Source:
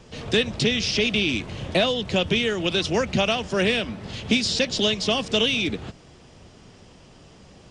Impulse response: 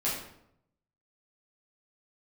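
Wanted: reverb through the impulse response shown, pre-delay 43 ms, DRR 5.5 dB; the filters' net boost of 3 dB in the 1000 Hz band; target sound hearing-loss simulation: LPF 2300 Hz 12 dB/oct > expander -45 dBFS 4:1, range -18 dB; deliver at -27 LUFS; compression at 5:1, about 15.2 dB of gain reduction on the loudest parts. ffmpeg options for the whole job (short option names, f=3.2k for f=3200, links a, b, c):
-filter_complex "[0:a]equalizer=f=1k:t=o:g=4.5,acompressor=threshold=-34dB:ratio=5,asplit=2[a][b];[1:a]atrim=start_sample=2205,adelay=43[c];[b][c]afir=irnorm=-1:irlink=0,volume=-13dB[d];[a][d]amix=inputs=2:normalize=0,lowpass=2.3k,agate=range=-18dB:threshold=-45dB:ratio=4,volume=9.5dB"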